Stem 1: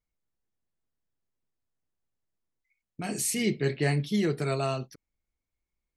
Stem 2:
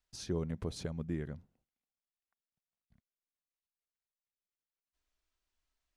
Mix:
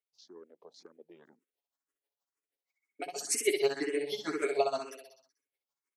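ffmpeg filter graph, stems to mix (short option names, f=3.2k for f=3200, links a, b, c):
-filter_complex "[0:a]aecho=1:1:7.2:0.8,aeval=exprs='val(0)*pow(10,-40*(0.5-0.5*cos(2*PI*6.3*n/s))/20)':c=same,volume=-0.5dB,asplit=2[a][b];[b]volume=-4.5dB[c];[1:a]afwtdn=0.00282,volume=-8.5dB[d];[c]aecho=0:1:63|126|189|252|315|378|441|504:1|0.54|0.292|0.157|0.085|0.0459|0.0248|0.0134[e];[a][d][e]amix=inputs=3:normalize=0,highpass=f=350:w=0.5412,highpass=f=350:w=1.3066,dynaudnorm=f=350:g=5:m=6dB,asplit=2[f][g];[g]afreqshift=2[h];[f][h]amix=inputs=2:normalize=1"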